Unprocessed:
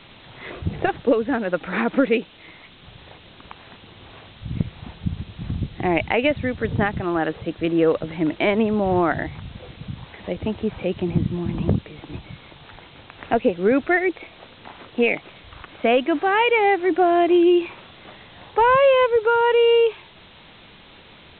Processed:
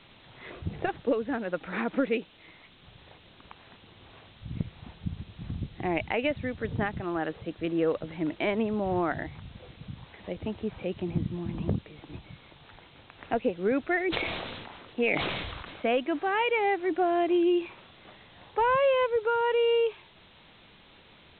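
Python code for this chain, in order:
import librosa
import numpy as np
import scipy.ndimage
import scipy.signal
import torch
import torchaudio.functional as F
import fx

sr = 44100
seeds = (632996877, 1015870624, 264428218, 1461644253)

y = fx.sustainer(x, sr, db_per_s=30.0, at=(13.97, 15.97))
y = F.gain(torch.from_numpy(y), -8.5).numpy()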